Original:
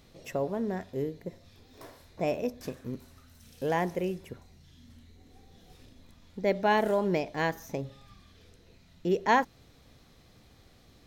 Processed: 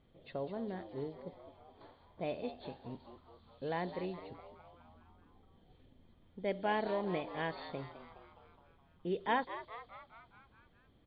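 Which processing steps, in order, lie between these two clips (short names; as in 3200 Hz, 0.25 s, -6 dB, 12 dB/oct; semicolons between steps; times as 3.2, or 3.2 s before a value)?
nonlinear frequency compression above 3000 Hz 4:1; frequency-shifting echo 0.209 s, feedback 62%, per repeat +110 Hz, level -12.5 dB; low-pass opened by the level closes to 2800 Hz, open at -24.5 dBFS; mismatched tape noise reduction decoder only; gain -9 dB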